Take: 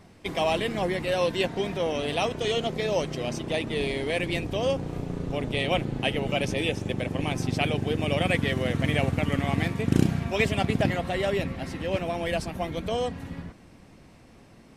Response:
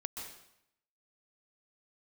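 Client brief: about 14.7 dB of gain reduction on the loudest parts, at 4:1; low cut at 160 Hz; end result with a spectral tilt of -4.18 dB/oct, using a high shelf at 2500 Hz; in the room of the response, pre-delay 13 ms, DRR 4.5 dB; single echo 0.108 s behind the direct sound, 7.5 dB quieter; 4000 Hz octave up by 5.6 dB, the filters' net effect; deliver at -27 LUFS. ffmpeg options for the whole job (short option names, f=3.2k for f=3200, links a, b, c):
-filter_complex "[0:a]highpass=160,highshelf=f=2.5k:g=5.5,equalizer=f=4k:t=o:g=3,acompressor=threshold=-35dB:ratio=4,aecho=1:1:108:0.422,asplit=2[a][b];[1:a]atrim=start_sample=2205,adelay=13[c];[b][c]afir=irnorm=-1:irlink=0,volume=-4dB[d];[a][d]amix=inputs=2:normalize=0,volume=7.5dB"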